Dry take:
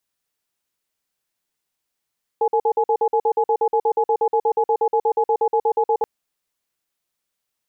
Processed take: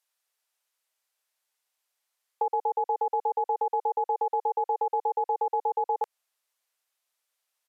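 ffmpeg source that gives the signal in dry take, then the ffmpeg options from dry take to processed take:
-f lavfi -i "aevalsrc='0.133*(sin(2*PI*454*t)+sin(2*PI*844*t))*clip(min(mod(t,0.12),0.07-mod(t,0.12))/0.005,0,1)':d=3.63:s=44100"
-af "aresample=32000,aresample=44100,highpass=f=530:w=0.5412,highpass=f=530:w=1.3066,acompressor=threshold=-24dB:ratio=6"

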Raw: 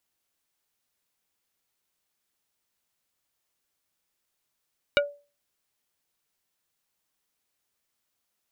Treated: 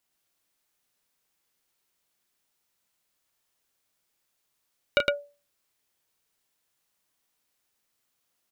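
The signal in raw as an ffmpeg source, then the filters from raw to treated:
-f lavfi -i "aevalsrc='0.15*pow(10,-3*t/0.33)*sin(2*PI*576*t)+0.133*pow(10,-3*t/0.11)*sin(2*PI*1440*t)+0.119*pow(10,-3*t/0.063)*sin(2*PI*2304*t)+0.106*pow(10,-3*t/0.048)*sin(2*PI*2880*t)+0.0944*pow(10,-3*t/0.035)*sin(2*PI*3744*t)':d=0.45:s=44100"
-af "equalizer=f=75:w=3:g=-4,aecho=1:1:32.07|110.8:0.501|0.794"

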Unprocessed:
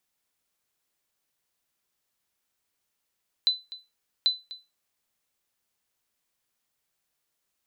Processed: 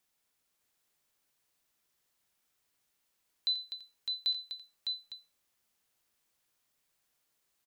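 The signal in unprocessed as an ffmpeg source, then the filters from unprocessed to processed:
-f lavfi -i "aevalsrc='0.188*(sin(2*PI*4010*mod(t,0.79))*exp(-6.91*mod(t,0.79)/0.24)+0.133*sin(2*PI*4010*max(mod(t,0.79)-0.25,0))*exp(-6.91*max(mod(t,0.79)-0.25,0)/0.24))':d=1.58:s=44100"
-filter_complex "[0:a]alimiter=level_in=1dB:limit=-24dB:level=0:latency=1:release=30,volume=-1dB,asplit=2[a][b];[b]aecho=0:1:86|607:0.211|0.596[c];[a][c]amix=inputs=2:normalize=0"

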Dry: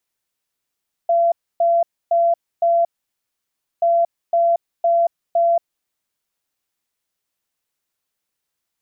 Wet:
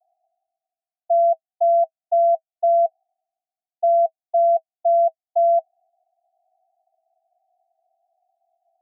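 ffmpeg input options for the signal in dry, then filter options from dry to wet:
-f lavfi -i "aevalsrc='0.237*sin(2*PI*680*t)*clip(min(mod(mod(t,2.73),0.51),0.23-mod(mod(t,2.73),0.51))/0.005,0,1)*lt(mod(t,2.73),2.04)':d=5.46:s=44100"
-af "areverse,acompressor=mode=upward:threshold=-22dB:ratio=2.5,areverse,asuperpass=centerf=710:order=12:qfactor=5.3"

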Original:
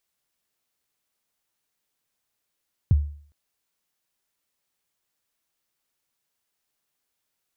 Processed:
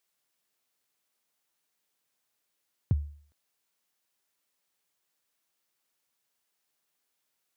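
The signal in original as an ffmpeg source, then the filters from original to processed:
-f lavfi -i "aevalsrc='0.282*pow(10,-3*t/0.5)*sin(2*PI*(140*0.026/log(73/140)*(exp(log(73/140)*min(t,0.026)/0.026)-1)+73*max(t-0.026,0)))':d=0.41:s=44100"
-af "highpass=f=180:p=1"

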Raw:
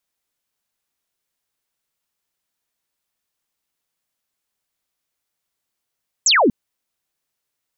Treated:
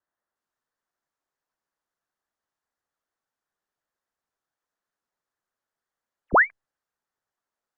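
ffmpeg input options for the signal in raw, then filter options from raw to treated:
-f lavfi -i "aevalsrc='0.282*clip(t/0.002,0,1)*clip((0.24-t)/0.002,0,1)*sin(2*PI*8100*0.24/log(200/8100)*(exp(log(200/8100)*t/0.24)-1))':d=0.24:s=44100"
-af "highpass=f=720:w=0.5412,highpass=f=720:w=1.3066,lowpass=f=2.2k:t=q:w=0.5098,lowpass=f=2.2k:t=q:w=0.6013,lowpass=f=2.2k:t=q:w=0.9,lowpass=f=2.2k:t=q:w=2.563,afreqshift=-2600" -ar 48000 -c:a libopus -b:a 48k

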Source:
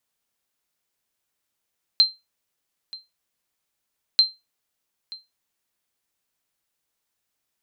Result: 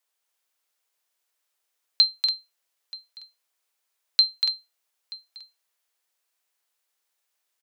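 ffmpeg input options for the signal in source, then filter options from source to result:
-f lavfi -i "aevalsrc='0.422*(sin(2*PI*4130*mod(t,2.19))*exp(-6.91*mod(t,2.19)/0.21)+0.0891*sin(2*PI*4130*max(mod(t,2.19)-0.93,0))*exp(-6.91*max(mod(t,2.19)-0.93,0)/0.21))':d=4.38:s=44100"
-filter_complex "[0:a]lowshelf=f=160:g=-12,acrossover=split=330|3400[a][b][c];[a]acrusher=bits=3:dc=4:mix=0:aa=0.000001[d];[d][b][c]amix=inputs=3:normalize=0,aecho=1:1:239.1|285.7:0.501|0.447"

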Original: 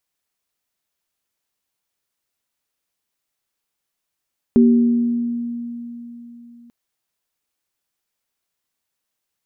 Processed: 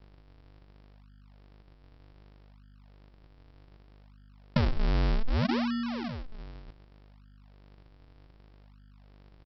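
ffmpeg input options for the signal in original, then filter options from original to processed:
-f lavfi -i "aevalsrc='0.398*pow(10,-3*t/3.67)*sin(2*PI*237*t)+0.168*pow(10,-3*t/1.22)*sin(2*PI*387*t)':d=2.14:s=44100"
-af "acompressor=threshold=-22dB:ratio=12,aeval=exprs='val(0)+0.002*(sin(2*PI*50*n/s)+sin(2*PI*2*50*n/s)/2+sin(2*PI*3*50*n/s)/3+sin(2*PI*4*50*n/s)/4+sin(2*PI*5*50*n/s)/5)':c=same,aresample=11025,acrusher=samples=33:mix=1:aa=0.000001:lfo=1:lforange=52.8:lforate=0.65,aresample=44100"

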